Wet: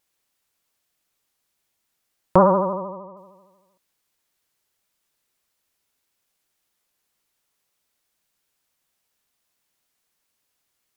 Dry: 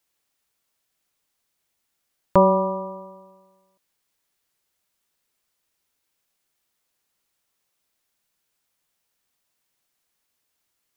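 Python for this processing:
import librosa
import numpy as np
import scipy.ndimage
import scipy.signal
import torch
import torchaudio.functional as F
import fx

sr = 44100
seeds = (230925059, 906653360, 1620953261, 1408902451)

y = fx.lowpass(x, sr, hz=2000.0, slope=24, at=(2.73, 3.17))
y = fx.vibrato(y, sr, rate_hz=13.0, depth_cents=86.0)
y = fx.doppler_dist(y, sr, depth_ms=0.16)
y = y * 10.0 ** (1.0 / 20.0)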